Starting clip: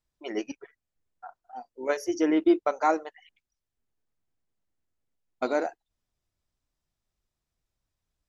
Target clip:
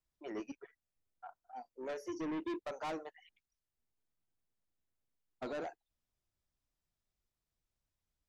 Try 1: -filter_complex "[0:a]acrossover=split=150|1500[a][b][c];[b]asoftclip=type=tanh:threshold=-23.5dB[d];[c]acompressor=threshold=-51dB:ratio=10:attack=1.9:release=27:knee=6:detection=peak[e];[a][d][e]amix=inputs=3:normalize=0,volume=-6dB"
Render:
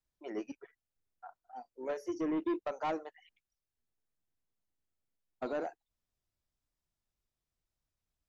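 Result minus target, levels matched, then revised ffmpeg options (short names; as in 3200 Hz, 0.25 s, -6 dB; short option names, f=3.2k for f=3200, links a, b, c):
soft clip: distortion -5 dB
-filter_complex "[0:a]acrossover=split=150|1500[a][b][c];[b]asoftclip=type=tanh:threshold=-31.5dB[d];[c]acompressor=threshold=-51dB:ratio=10:attack=1.9:release=27:knee=6:detection=peak[e];[a][d][e]amix=inputs=3:normalize=0,volume=-6dB"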